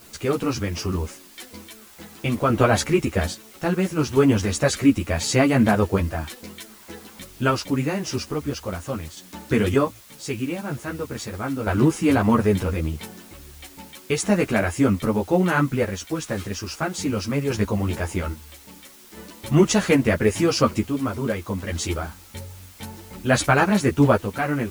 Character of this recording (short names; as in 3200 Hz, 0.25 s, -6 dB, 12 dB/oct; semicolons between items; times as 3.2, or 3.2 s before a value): random-step tremolo 1.2 Hz, depth 70%; a quantiser's noise floor 8-bit, dither triangular; a shimmering, thickened sound